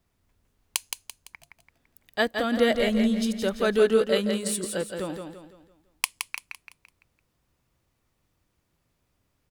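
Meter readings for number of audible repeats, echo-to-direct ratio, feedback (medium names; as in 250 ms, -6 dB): 4, -5.0 dB, 40%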